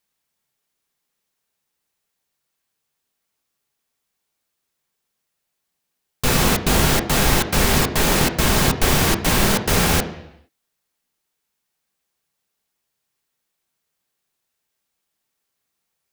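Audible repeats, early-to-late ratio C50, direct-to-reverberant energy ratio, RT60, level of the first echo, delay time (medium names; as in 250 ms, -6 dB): no echo, 12.0 dB, 6.0 dB, 0.85 s, no echo, no echo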